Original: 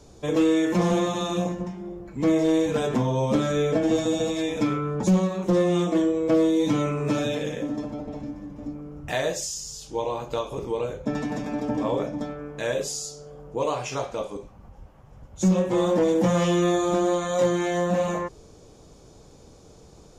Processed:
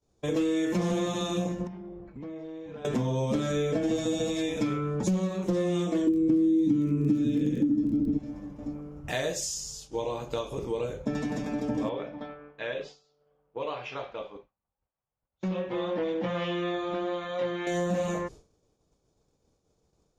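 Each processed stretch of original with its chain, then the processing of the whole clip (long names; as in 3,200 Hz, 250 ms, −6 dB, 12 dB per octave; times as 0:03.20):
0:01.67–0:02.85: downward compressor 12 to 1, threshold −34 dBFS + high-frequency loss of the air 220 metres
0:06.07–0:08.17: low shelf with overshoot 440 Hz +13 dB, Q 3 + surface crackle 21 per second −25 dBFS
0:11.89–0:17.67: low-pass filter 3,500 Hz 24 dB per octave + low-shelf EQ 410 Hz −12 dB
whole clip: downward expander −36 dBFS; dynamic equaliser 920 Hz, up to −5 dB, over −38 dBFS, Q 1.1; downward compressor, threshold −22 dBFS; level −1.5 dB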